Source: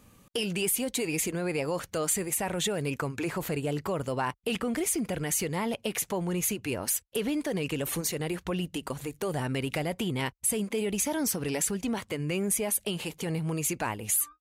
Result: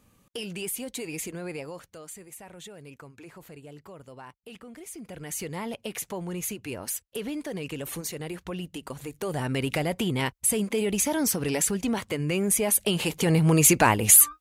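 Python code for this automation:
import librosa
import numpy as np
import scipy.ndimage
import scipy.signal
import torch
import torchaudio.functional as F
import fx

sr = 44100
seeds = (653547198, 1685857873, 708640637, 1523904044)

y = fx.gain(x, sr, db=fx.line((1.52, -5.0), (2.02, -15.0), (4.8, -15.0), (5.46, -3.5), (8.84, -3.5), (9.64, 3.5), (12.45, 3.5), (13.64, 12.0)))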